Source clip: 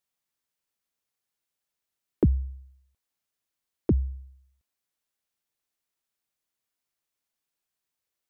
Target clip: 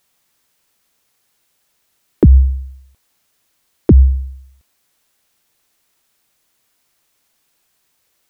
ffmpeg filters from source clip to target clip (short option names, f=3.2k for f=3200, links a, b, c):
-af "alimiter=level_in=22dB:limit=-1dB:release=50:level=0:latency=1,volume=-1dB"